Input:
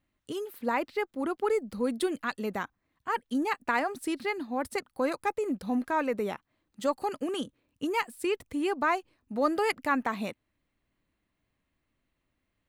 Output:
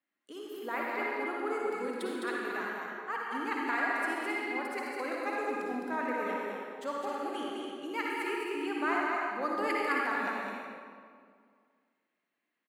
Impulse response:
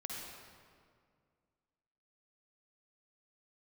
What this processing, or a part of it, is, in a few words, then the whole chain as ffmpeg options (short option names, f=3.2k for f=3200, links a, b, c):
stadium PA: -filter_complex "[0:a]highpass=f=240:w=0.5412,highpass=f=240:w=1.3066,equalizer=f=1.7k:t=o:w=1.3:g=7,aecho=1:1:209.9|268.2:0.631|0.282[a];[1:a]atrim=start_sample=2205[b];[a][b]afir=irnorm=-1:irlink=0,volume=-6.5dB"